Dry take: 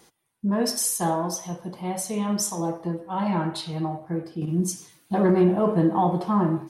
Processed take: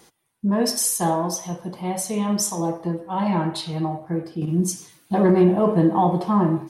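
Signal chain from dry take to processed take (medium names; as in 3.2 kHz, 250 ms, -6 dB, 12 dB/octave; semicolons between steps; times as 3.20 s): dynamic bell 1.4 kHz, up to -6 dB, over -54 dBFS, Q 7.1; trim +3 dB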